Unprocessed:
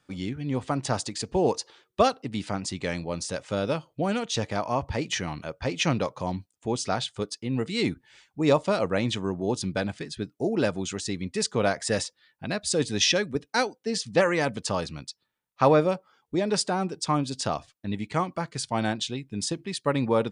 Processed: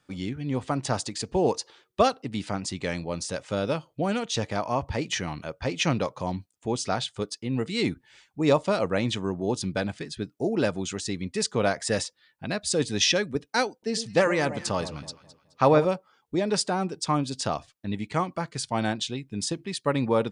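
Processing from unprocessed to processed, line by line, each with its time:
13.72–15.85 echo with dull and thin repeats by turns 0.106 s, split 1000 Hz, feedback 57%, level -11 dB

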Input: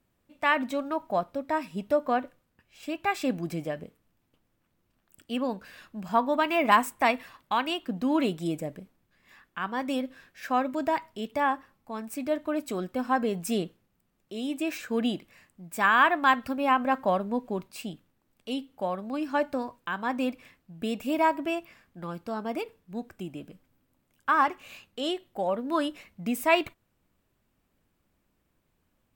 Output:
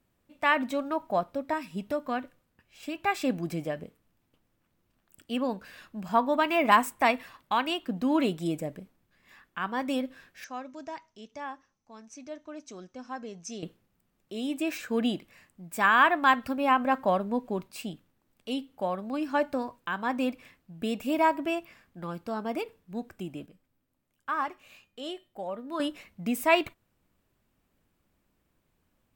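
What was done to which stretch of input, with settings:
1.53–2.96 dynamic EQ 620 Hz, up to -7 dB, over -38 dBFS, Q 0.7
10.44–13.63 ladder low-pass 6300 Hz, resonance 85%
23.46–25.8 resonator 610 Hz, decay 0.34 s

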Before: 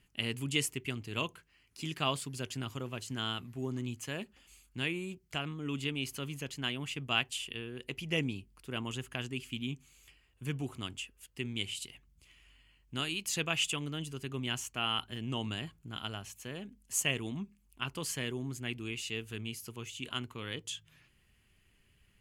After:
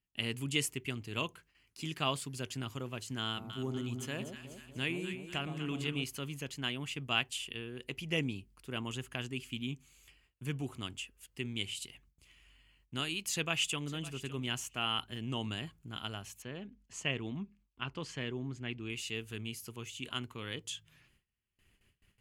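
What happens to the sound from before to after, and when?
3.25–6.04 echo with dull and thin repeats by turns 0.122 s, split 890 Hz, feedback 73%, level -6 dB
13.31–13.93 echo throw 0.56 s, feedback 10%, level -16.5 dB
16.42–18.9 air absorption 140 m
whole clip: gate with hold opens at -57 dBFS; gain -1 dB

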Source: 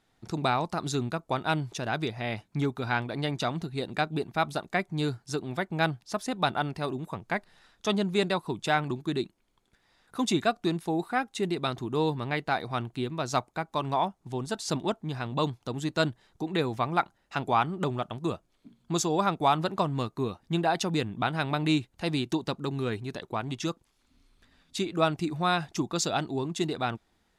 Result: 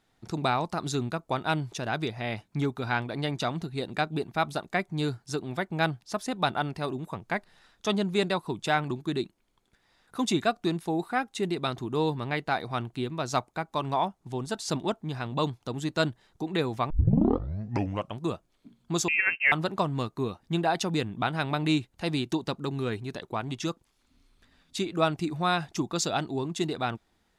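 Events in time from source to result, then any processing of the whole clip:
16.9 tape start 1.29 s
19.08–19.52 inverted band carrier 2900 Hz

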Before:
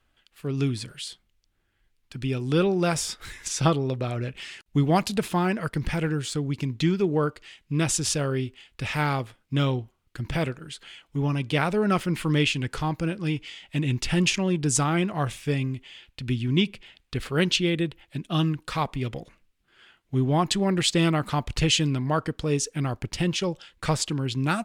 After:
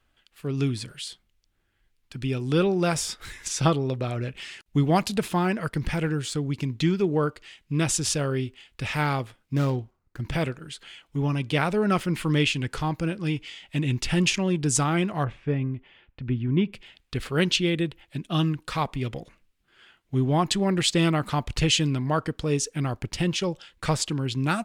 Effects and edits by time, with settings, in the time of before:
9.55–10.2 median filter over 15 samples
15.24–16.73 LPF 1600 Hz

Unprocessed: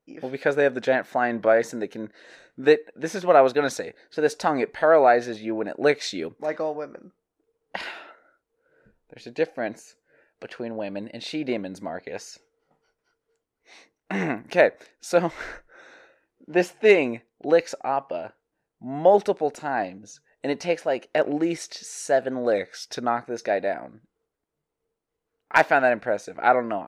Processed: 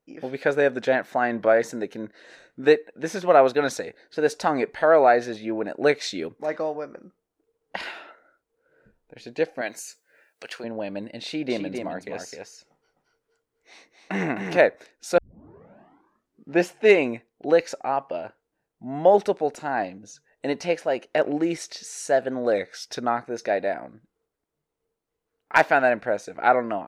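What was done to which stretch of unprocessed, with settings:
9.61–10.64 tilt +4 dB/oct
11.24–14.57 echo 0.258 s -5.5 dB
15.18 tape start 1.45 s

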